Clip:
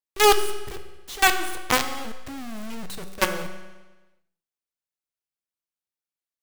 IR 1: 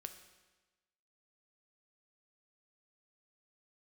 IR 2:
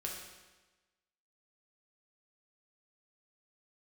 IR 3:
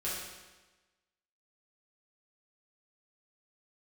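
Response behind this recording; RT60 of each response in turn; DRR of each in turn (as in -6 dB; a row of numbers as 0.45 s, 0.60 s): 1; 1.2 s, 1.2 s, 1.2 s; 7.0 dB, -2.0 dB, -9.0 dB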